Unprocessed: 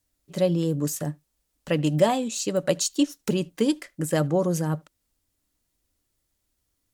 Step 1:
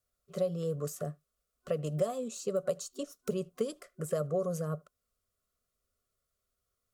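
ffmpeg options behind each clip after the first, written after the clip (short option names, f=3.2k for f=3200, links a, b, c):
-filter_complex "[0:a]superequalizer=6b=0.282:7b=2.24:8b=2.24:9b=0.316:10b=3.16,acrossover=split=1000|5700[a][b][c];[a]acompressor=threshold=-19dB:ratio=4[d];[b]acompressor=threshold=-44dB:ratio=4[e];[c]acompressor=threshold=-34dB:ratio=4[f];[d][e][f]amix=inputs=3:normalize=0,volume=-9dB"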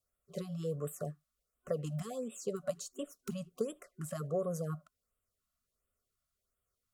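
-af "afftfilt=real='re*(1-between(b*sr/1024,370*pow(5400/370,0.5+0.5*sin(2*PI*1.4*pts/sr))/1.41,370*pow(5400/370,0.5+0.5*sin(2*PI*1.4*pts/sr))*1.41))':imag='im*(1-between(b*sr/1024,370*pow(5400/370,0.5+0.5*sin(2*PI*1.4*pts/sr))/1.41,370*pow(5400/370,0.5+0.5*sin(2*PI*1.4*pts/sr))*1.41))':win_size=1024:overlap=0.75,volume=-2.5dB"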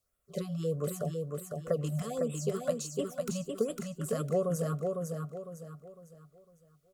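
-af "aecho=1:1:504|1008|1512|2016|2520:0.631|0.227|0.0818|0.0294|0.0106,volume=4.5dB"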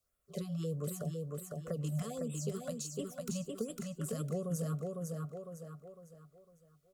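-filter_complex "[0:a]acrossover=split=300|3000[a][b][c];[b]acompressor=threshold=-42dB:ratio=3[d];[a][d][c]amix=inputs=3:normalize=0,volume=-2dB"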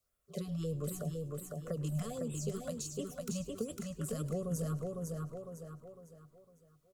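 -filter_complex "[0:a]asplit=5[a][b][c][d][e];[b]adelay=105,afreqshift=-140,volume=-17.5dB[f];[c]adelay=210,afreqshift=-280,volume=-23.2dB[g];[d]adelay=315,afreqshift=-420,volume=-28.9dB[h];[e]adelay=420,afreqshift=-560,volume=-34.5dB[i];[a][f][g][h][i]amix=inputs=5:normalize=0"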